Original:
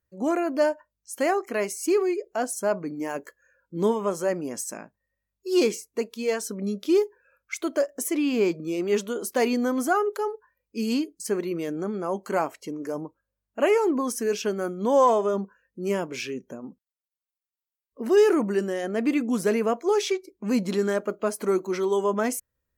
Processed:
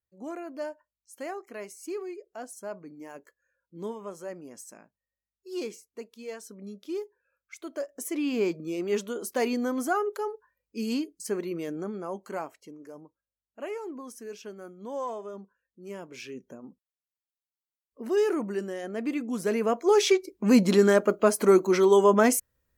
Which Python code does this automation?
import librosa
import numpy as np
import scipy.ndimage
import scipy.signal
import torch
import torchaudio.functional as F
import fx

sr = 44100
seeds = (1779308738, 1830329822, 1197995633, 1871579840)

y = fx.gain(x, sr, db=fx.line((7.54, -13.0), (8.26, -4.0), (11.76, -4.0), (13.01, -15.0), (15.85, -15.0), (16.4, -6.5), (19.31, -6.5), (20.16, 5.0)))